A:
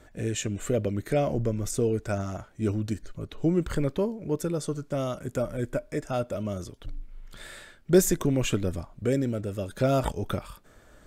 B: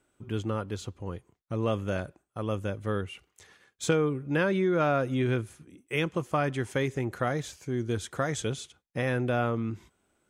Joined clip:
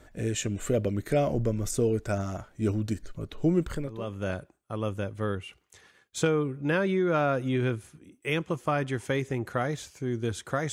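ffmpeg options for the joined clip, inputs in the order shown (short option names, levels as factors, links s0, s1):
-filter_complex "[0:a]apad=whole_dur=10.72,atrim=end=10.72,atrim=end=4.29,asetpts=PTS-STARTPTS[s0];[1:a]atrim=start=1.25:end=8.38,asetpts=PTS-STARTPTS[s1];[s0][s1]acrossfade=d=0.7:c1=qua:c2=qua"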